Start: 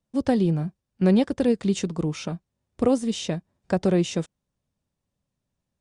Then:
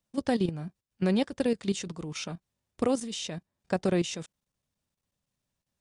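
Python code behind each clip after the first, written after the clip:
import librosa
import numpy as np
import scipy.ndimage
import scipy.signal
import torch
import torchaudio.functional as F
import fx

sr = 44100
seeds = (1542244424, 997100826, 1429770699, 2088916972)

y = fx.tilt_shelf(x, sr, db=-4.0, hz=970.0)
y = fx.level_steps(y, sr, step_db=12)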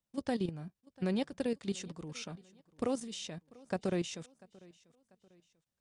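y = fx.echo_feedback(x, sr, ms=692, feedback_pct=41, wet_db=-23.5)
y = y * librosa.db_to_amplitude(-7.0)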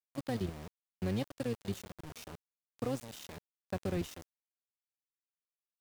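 y = fx.octave_divider(x, sr, octaves=1, level_db=-2.0)
y = np.where(np.abs(y) >= 10.0 ** (-38.5 / 20.0), y, 0.0)
y = y * librosa.db_to_amplitude(-3.0)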